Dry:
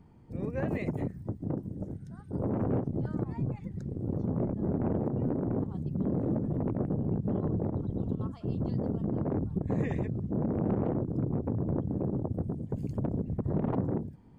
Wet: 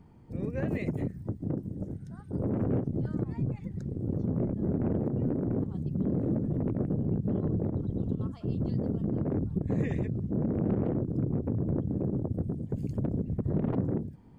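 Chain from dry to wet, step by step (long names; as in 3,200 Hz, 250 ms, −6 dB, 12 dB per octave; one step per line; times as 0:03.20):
dynamic equaliser 910 Hz, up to −7 dB, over −50 dBFS, Q 1.2
level +1.5 dB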